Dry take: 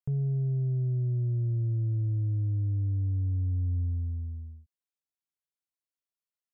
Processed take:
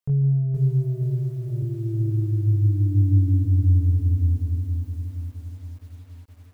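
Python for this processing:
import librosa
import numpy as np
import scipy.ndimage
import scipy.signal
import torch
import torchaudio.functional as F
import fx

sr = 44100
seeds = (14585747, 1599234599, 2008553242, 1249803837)

y = fx.curve_eq(x, sr, hz=(100.0, 150.0, 290.0, 460.0, 710.0, 1000.0), db=(0, -9, 9, -10, -21, -10), at=(1.62, 3.45))
y = fx.rider(y, sr, range_db=4, speed_s=0.5)
y = fx.doubler(y, sr, ms=21.0, db=-2.5)
y = y + 10.0 ** (-13.5 / 20.0) * np.pad(y, (int(145 * sr / 1000.0), 0))[:len(y)]
y = fx.echo_crushed(y, sr, ms=469, feedback_pct=55, bits=10, wet_db=-5.0)
y = y * librosa.db_to_amplitude(4.5)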